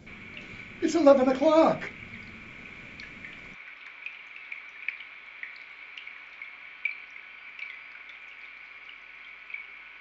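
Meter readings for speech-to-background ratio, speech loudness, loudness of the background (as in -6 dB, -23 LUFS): 18.5 dB, -22.5 LUFS, -41.0 LUFS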